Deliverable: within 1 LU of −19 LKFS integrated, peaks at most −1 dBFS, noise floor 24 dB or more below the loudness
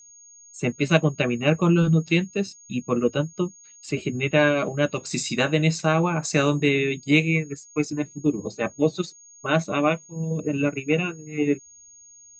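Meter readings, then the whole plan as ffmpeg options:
interfering tone 6,600 Hz; level of the tone −47 dBFS; integrated loudness −23.5 LKFS; sample peak −3.5 dBFS; target loudness −19.0 LKFS
→ -af "bandreject=frequency=6600:width=30"
-af "volume=4.5dB,alimiter=limit=-1dB:level=0:latency=1"

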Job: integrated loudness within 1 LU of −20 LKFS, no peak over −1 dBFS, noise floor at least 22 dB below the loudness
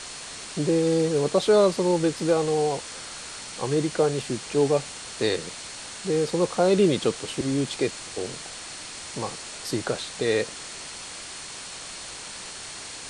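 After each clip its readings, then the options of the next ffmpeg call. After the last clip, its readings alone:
interfering tone 4,300 Hz; level of the tone −47 dBFS; background noise floor −39 dBFS; target noise floor −48 dBFS; integrated loudness −26.0 LKFS; sample peak −9.5 dBFS; target loudness −20.0 LKFS
→ -af "bandreject=frequency=4300:width=30"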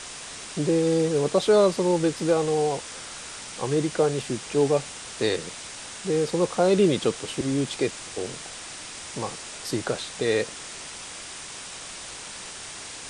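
interfering tone none found; background noise floor −39 dBFS; target noise floor −49 dBFS
→ -af "afftdn=noise_reduction=10:noise_floor=-39"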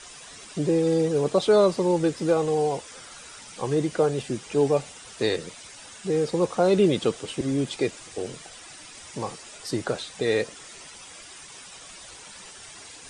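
background noise floor −45 dBFS; target noise floor −47 dBFS
→ -af "afftdn=noise_reduction=6:noise_floor=-45"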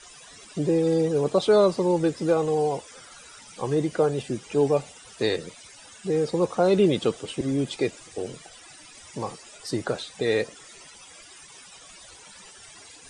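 background noise floor −48 dBFS; integrated loudness −25.0 LKFS; sample peak −9.5 dBFS; target loudness −20.0 LKFS
→ -af "volume=5dB"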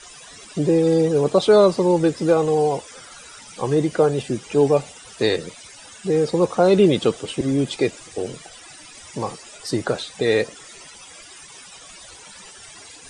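integrated loudness −20.0 LKFS; sample peak −4.5 dBFS; background noise floor −43 dBFS

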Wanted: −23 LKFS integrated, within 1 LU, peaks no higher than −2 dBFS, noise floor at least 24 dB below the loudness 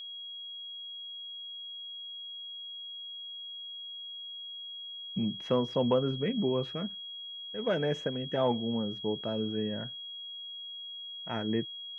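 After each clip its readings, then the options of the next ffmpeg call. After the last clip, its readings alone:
interfering tone 3,300 Hz; level of the tone −40 dBFS; integrated loudness −34.5 LKFS; sample peak −13.5 dBFS; target loudness −23.0 LKFS
→ -af "bandreject=frequency=3300:width=30"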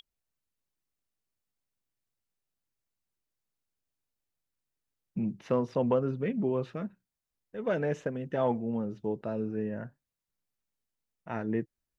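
interfering tone none found; integrated loudness −32.5 LKFS; sample peak −14.0 dBFS; target loudness −23.0 LKFS
→ -af "volume=9.5dB"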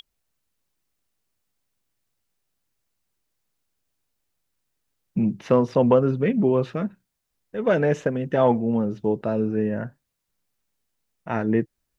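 integrated loudness −23.0 LKFS; sample peak −4.5 dBFS; background noise floor −79 dBFS

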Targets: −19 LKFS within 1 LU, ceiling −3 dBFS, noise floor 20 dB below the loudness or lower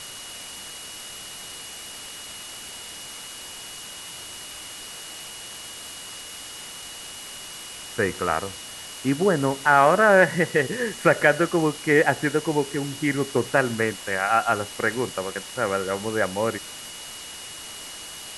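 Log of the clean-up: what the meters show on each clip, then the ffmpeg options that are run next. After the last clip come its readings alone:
interfering tone 2,900 Hz; level of the tone −42 dBFS; background noise floor −39 dBFS; target noise floor −43 dBFS; integrated loudness −22.5 LKFS; sample peak −3.5 dBFS; target loudness −19.0 LKFS
→ -af "bandreject=frequency=2900:width=30"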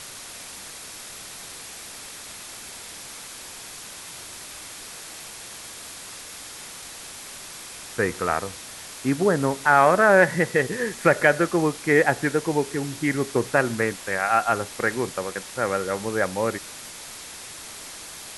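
interfering tone none found; background noise floor −40 dBFS; target noise floor −43 dBFS
→ -af "afftdn=noise_reduction=6:noise_floor=-40"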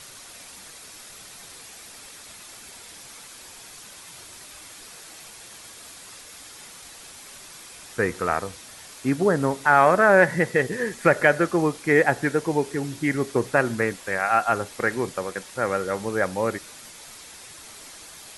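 background noise floor −44 dBFS; integrated loudness −22.5 LKFS; sample peak −3.5 dBFS; target loudness −19.0 LKFS
→ -af "volume=3.5dB,alimiter=limit=-3dB:level=0:latency=1"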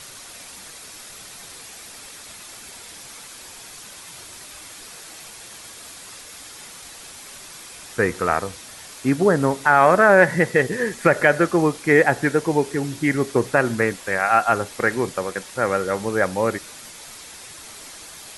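integrated loudness −19.5 LKFS; sample peak −3.0 dBFS; background noise floor −41 dBFS

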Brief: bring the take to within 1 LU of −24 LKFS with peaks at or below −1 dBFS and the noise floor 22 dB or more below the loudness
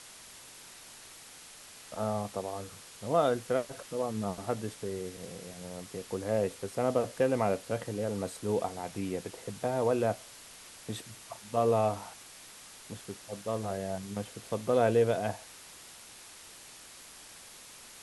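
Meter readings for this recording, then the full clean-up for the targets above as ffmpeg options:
background noise floor −51 dBFS; target noise floor −55 dBFS; integrated loudness −32.5 LKFS; sample peak −14.0 dBFS; target loudness −24.0 LKFS
→ -af "afftdn=noise_reduction=6:noise_floor=-51"
-af "volume=8.5dB"

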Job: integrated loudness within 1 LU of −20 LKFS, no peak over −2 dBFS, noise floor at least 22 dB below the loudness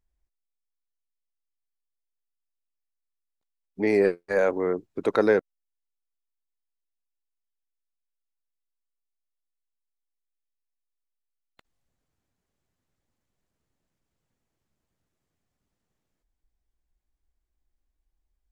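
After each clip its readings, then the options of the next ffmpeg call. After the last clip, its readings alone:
integrated loudness −24.5 LKFS; sample peak −7.5 dBFS; target loudness −20.0 LKFS
→ -af "volume=4.5dB"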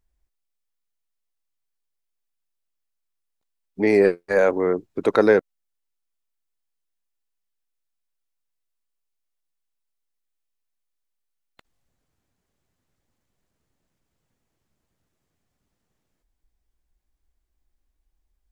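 integrated loudness −20.0 LKFS; sample peak −3.0 dBFS; background noise floor −78 dBFS

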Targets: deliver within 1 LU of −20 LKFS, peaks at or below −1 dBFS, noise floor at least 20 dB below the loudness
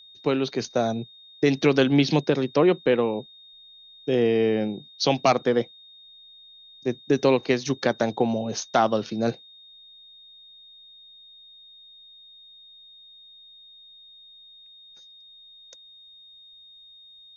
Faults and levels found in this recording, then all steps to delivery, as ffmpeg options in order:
interfering tone 3,700 Hz; level of the tone −47 dBFS; integrated loudness −23.5 LKFS; sample peak −6.5 dBFS; target loudness −20.0 LKFS
→ -af "bandreject=frequency=3700:width=30"
-af "volume=3.5dB"

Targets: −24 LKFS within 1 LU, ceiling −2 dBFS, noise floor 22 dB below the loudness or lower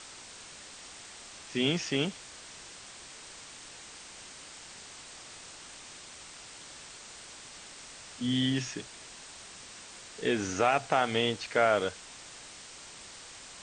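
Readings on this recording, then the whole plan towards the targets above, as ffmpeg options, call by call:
background noise floor −49 dBFS; target noise floor −52 dBFS; integrated loudness −29.5 LKFS; sample peak −10.5 dBFS; target loudness −24.0 LKFS
→ -af "afftdn=noise_reduction=6:noise_floor=-49"
-af "volume=5.5dB"

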